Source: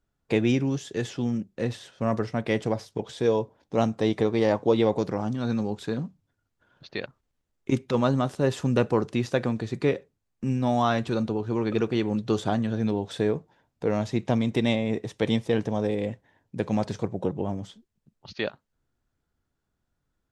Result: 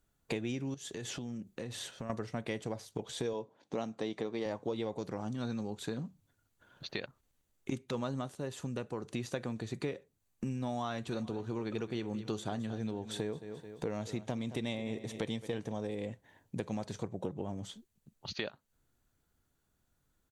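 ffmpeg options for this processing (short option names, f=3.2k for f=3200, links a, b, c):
-filter_complex "[0:a]asettb=1/sr,asplit=3[a][b][c];[a]atrim=end=0.744[d];[b]atrim=start=0.74:end=2.1,asetpts=PTS-STARTPTS,afade=t=in:d=0.004:c=qsin,afade=t=out:st=1.356:d=0.004:c=qsin,acompressor=threshold=-38dB:ratio=5:attack=3.2:release=140:knee=1:detection=peak[e];[c]atrim=start=2.096[f];[d][e]acrossfade=d=0.004:c1=hsin:c2=qsin[g];[g][f]acrossfade=d=0.004:c1=qsin:c2=hsin,asettb=1/sr,asplit=3[h][i][j];[h]atrim=end=3.334[k];[i]atrim=start=3.33:end=4.46,asetpts=PTS-STARTPTS,afade=t=in:d=0.004:c=qsin,afade=t=out:st=1.126:d=0.004:c=qsin,highpass=170,lowpass=6.5k[l];[j]atrim=start=4.456[m];[k][l]acrossfade=d=0.004:c1=hsin:c2=qsin[n];[n][m]acrossfade=d=0.004:c1=qsin:c2=hsin,asplit=3[o][p][q];[o]afade=t=out:st=11.11:d=0.02[r];[p]aecho=1:1:217|434|651:0.168|0.0537|0.0172,afade=t=in:st=11.11:d=0.02,afade=t=out:st=15.71:d=0.02[s];[q]afade=t=in:st=15.71:d=0.02[t];[r][s][t]amix=inputs=3:normalize=0,asplit=3[u][v][w];[u]atrim=end=8.49,asetpts=PTS-STARTPTS,afade=t=out:st=8.2:d=0.29:c=qua:silence=0.375837[x];[v]atrim=start=8.49:end=8.94,asetpts=PTS-STARTPTS,volume=-8.5dB[y];[w]atrim=start=8.94,asetpts=PTS-STARTPTS,afade=t=in:d=0.29:c=qua:silence=0.375837[z];[x][y][z]concat=n=3:v=0:a=1,aemphasis=mode=production:type=cd,bandreject=f=5.2k:w=9.7,acompressor=threshold=-37dB:ratio=4,volume=1dB"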